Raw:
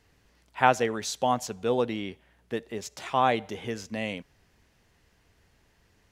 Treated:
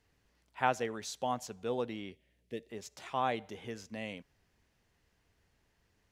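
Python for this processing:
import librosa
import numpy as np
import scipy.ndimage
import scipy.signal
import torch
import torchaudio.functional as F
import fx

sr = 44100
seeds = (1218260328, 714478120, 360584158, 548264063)

y = fx.band_shelf(x, sr, hz=1100.0, db=-14.0, octaves=1.3, at=(2.11, 2.7))
y = y * 10.0 ** (-9.0 / 20.0)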